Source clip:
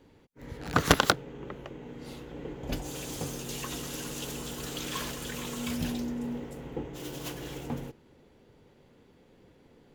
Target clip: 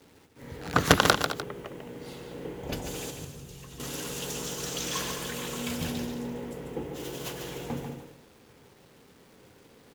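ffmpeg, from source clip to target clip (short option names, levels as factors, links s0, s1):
-filter_complex "[0:a]highpass=61,bandreject=f=50:t=h:w=6,bandreject=f=100:t=h:w=6,bandreject=f=150:t=h:w=6,bandreject=f=200:t=h:w=6,bandreject=f=250:t=h:w=6,bandreject=f=300:t=h:w=6,bandreject=f=350:t=h:w=6,acrusher=bits=9:mix=0:aa=0.000001,asettb=1/sr,asplit=3[s0][s1][s2];[s0]atrim=end=3.104[s3];[s1]atrim=start=3.1:end=3.8,asetpts=PTS-STARTPTS,afade=t=in:d=0.004:c=qsin,afade=t=out:st=0.696:d=0.004:c=qsin,acrossover=split=150[s4][s5];[s5]acompressor=threshold=0.00224:ratio=4[s6];[s4][s6]amix=inputs=2:normalize=0[s7];[s2]atrim=start=3.796[s8];[s3][s7]acrossfade=d=0.004:c1=hsin:c2=qsin[s9];[s9][s8]acrossfade=d=0.004:c1=qsin:c2=hsin,asettb=1/sr,asplit=3[s10][s11][s12];[s10]atrim=end=4.304[s13];[s11]atrim=start=4.3:end=5.01,asetpts=PTS-STARTPTS,afade=t=in:d=0.004:c=qsin,afade=t=out:st=0.706:d=0.004:c=qsin,equalizer=f=5900:t=o:w=0.54:g=7[s14];[s12]atrim=start=5.006[s15];[s13][s14]acrossfade=d=0.004:c1=hsin:c2=qsin[s16];[s16][s15]acrossfade=d=0.004:c1=qsin:c2=hsin,asplit=2[s17][s18];[s18]aecho=0:1:144|215|300:0.447|0.211|0.168[s19];[s17][s19]amix=inputs=2:normalize=0,volume=1.19"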